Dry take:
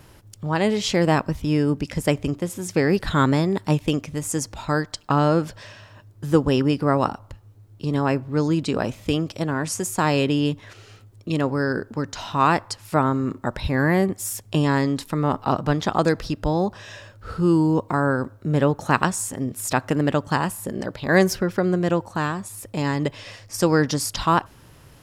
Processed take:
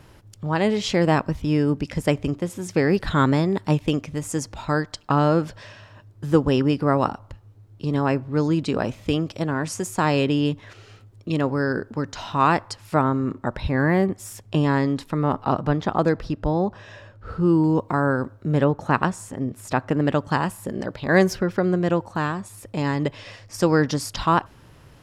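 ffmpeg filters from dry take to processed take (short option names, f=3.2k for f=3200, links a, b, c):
-af "asetnsamples=n=441:p=0,asendcmd='13.01 lowpass f 2900;15.68 lowpass f 1700;17.64 lowpass f 4500;18.64 lowpass f 1900;20.01 lowpass f 4400',lowpass=f=5.1k:p=1"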